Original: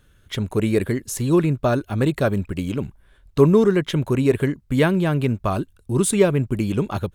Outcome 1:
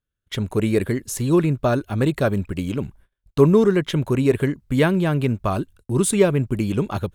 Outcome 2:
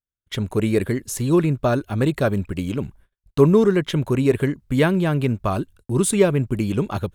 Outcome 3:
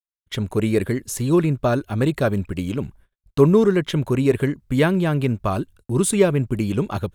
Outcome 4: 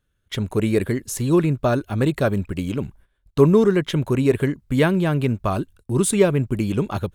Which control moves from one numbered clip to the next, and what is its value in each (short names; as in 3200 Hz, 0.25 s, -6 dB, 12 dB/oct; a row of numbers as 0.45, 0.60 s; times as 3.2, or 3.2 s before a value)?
gate, range: -29, -41, -59, -16 dB